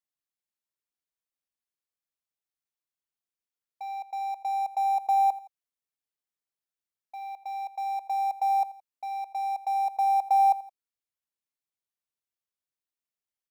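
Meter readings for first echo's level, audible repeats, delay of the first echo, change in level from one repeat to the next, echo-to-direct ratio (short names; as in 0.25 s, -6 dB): -18.0 dB, 2, 84 ms, -6.5 dB, -17.0 dB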